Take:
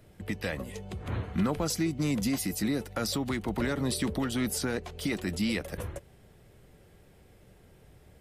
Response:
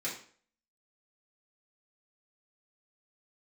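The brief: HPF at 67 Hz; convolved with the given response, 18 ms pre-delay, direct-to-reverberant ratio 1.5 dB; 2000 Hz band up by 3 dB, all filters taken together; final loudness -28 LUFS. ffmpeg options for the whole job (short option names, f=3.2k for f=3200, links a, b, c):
-filter_complex "[0:a]highpass=67,equalizer=f=2k:t=o:g=3.5,asplit=2[a][b];[1:a]atrim=start_sample=2205,adelay=18[c];[b][c]afir=irnorm=-1:irlink=0,volume=-5dB[d];[a][d]amix=inputs=2:normalize=0,volume=0.5dB"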